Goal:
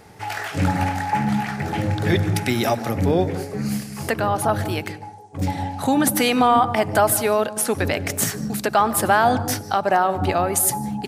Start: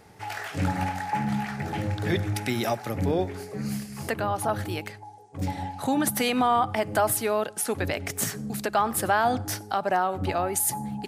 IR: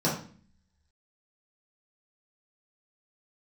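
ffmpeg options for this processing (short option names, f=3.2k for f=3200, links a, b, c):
-filter_complex "[0:a]asplit=2[a][b];[1:a]atrim=start_sample=2205,adelay=145[c];[b][c]afir=irnorm=-1:irlink=0,volume=-27.5dB[d];[a][d]amix=inputs=2:normalize=0,volume=6dB"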